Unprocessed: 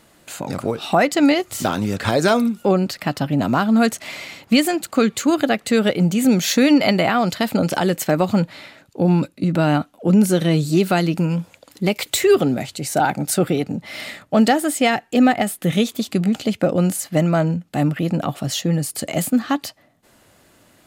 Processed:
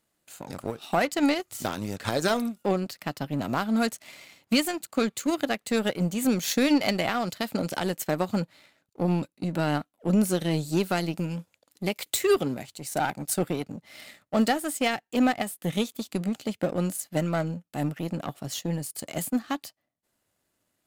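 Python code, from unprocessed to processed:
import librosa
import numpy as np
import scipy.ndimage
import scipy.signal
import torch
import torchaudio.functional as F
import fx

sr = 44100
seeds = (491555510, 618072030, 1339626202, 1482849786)

y = fx.power_curve(x, sr, exponent=1.4)
y = fx.high_shelf(y, sr, hz=6000.0, db=7.0)
y = y * librosa.db_to_amplitude(-6.0)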